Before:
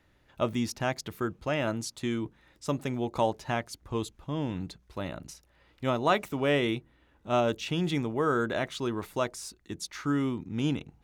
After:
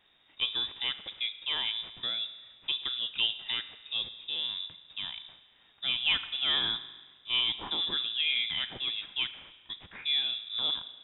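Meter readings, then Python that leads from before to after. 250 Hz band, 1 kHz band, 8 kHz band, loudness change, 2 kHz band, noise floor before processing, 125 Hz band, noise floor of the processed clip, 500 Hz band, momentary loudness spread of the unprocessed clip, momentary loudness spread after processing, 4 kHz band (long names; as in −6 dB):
−22.5 dB, −13.0 dB, below −35 dB, +0.5 dB, 0.0 dB, −66 dBFS, −22.5 dB, −63 dBFS, −23.0 dB, 11 LU, 11 LU, +14.0 dB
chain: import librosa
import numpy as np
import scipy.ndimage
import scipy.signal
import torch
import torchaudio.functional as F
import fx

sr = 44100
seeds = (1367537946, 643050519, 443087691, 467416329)

p1 = fx.cvsd(x, sr, bps=64000)
p2 = fx.rev_spring(p1, sr, rt60_s=1.3, pass_ms=(35,), chirp_ms=50, drr_db=12.0)
p3 = fx.quant_dither(p2, sr, seeds[0], bits=8, dither='triangular')
p4 = p2 + F.gain(torch.from_numpy(p3), -11.5).numpy()
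p5 = fx.freq_invert(p4, sr, carrier_hz=3700)
y = F.gain(torch.from_numpy(p5), -5.0).numpy()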